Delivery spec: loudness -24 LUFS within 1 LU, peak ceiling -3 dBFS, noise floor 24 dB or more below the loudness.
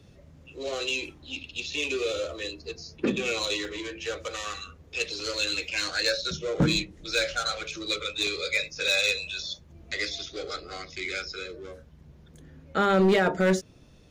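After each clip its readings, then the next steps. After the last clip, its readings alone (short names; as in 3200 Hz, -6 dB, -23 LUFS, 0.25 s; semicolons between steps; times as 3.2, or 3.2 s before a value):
clipped 0.4%; flat tops at -16.0 dBFS; dropouts 4; longest dropout 2.0 ms; loudness -28.0 LUFS; peak -16.0 dBFS; loudness target -24.0 LUFS
-> clip repair -16 dBFS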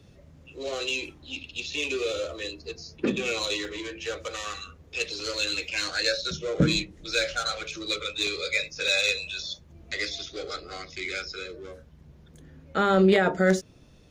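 clipped 0.0%; dropouts 4; longest dropout 2.0 ms
-> interpolate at 3.65/5.2/8.27/8.88, 2 ms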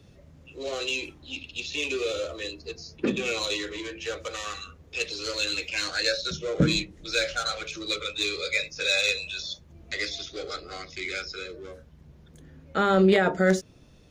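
dropouts 0; loudness -27.5 LUFS; peak -7.0 dBFS; loudness target -24.0 LUFS
-> gain +3.5 dB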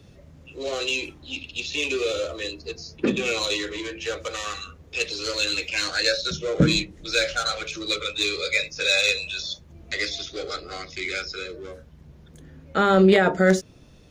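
loudness -24.0 LUFS; peak -3.5 dBFS; noise floor -50 dBFS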